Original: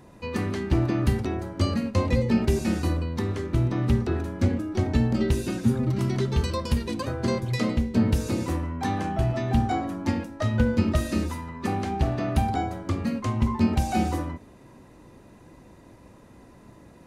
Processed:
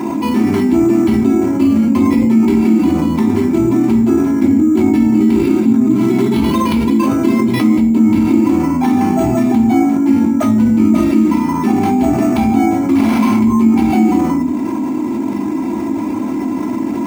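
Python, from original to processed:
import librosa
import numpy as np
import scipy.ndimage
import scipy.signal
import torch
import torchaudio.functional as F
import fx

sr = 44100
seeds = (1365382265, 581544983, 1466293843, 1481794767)

y = fx.clip_1bit(x, sr, at=(12.95, 13.36))
y = scipy.signal.sosfilt(scipy.signal.butter(2, 170.0, 'highpass', fs=sr, output='sos'), y)
y = y + 0.41 * np.pad(y, (int(3.0 * sr / 1000.0), 0))[:len(y)]
y = fx.room_shoebox(y, sr, seeds[0], volume_m3=270.0, walls='furnished', distance_m=3.0)
y = np.repeat(y[::6], 6)[:len(y)]
y = fx.small_body(y, sr, hz=(250.0, 850.0, 2200.0), ring_ms=25, db=17)
y = fx.env_flatten(y, sr, amount_pct=70)
y = y * 10.0 ** (-12.0 / 20.0)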